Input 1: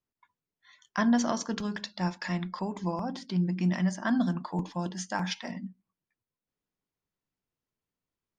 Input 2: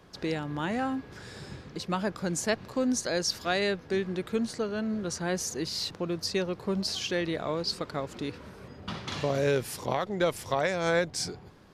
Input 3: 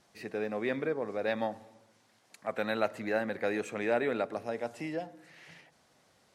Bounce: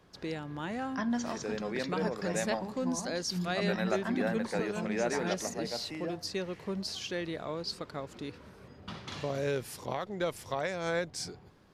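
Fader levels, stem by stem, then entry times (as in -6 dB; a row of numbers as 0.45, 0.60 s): -7.5, -6.0, -3.0 dB; 0.00, 0.00, 1.10 s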